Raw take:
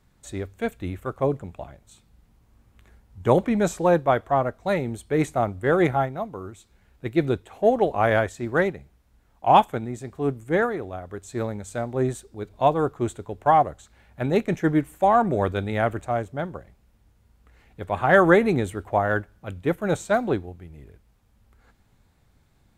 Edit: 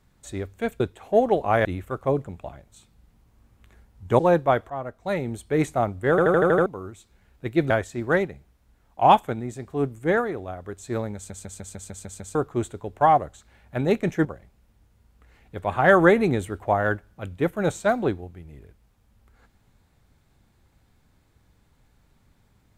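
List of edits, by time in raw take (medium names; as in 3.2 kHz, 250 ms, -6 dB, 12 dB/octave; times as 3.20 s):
3.34–3.79 s: delete
4.30–4.94 s: fade in, from -13.5 dB
5.70 s: stutter in place 0.08 s, 7 plays
7.30–8.15 s: move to 0.80 s
11.60 s: stutter in place 0.15 s, 8 plays
14.70–16.50 s: delete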